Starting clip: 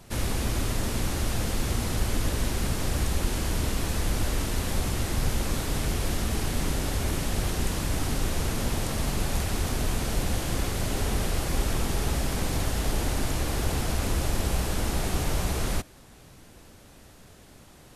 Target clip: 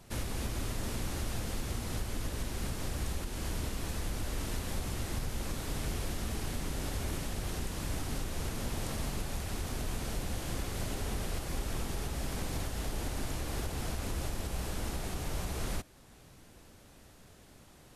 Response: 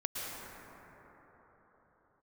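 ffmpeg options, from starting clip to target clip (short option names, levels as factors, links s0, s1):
-af "alimiter=limit=0.106:level=0:latency=1:release=343,volume=0.531"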